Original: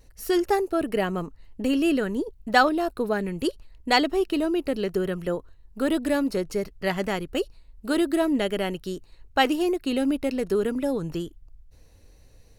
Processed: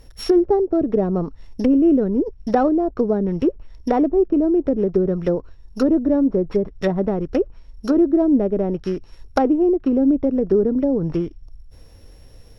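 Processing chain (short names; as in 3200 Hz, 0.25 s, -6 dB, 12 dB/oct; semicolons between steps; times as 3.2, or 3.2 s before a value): sample sorter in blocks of 8 samples; treble ducked by the level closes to 510 Hz, closed at -22 dBFS; gain +8.5 dB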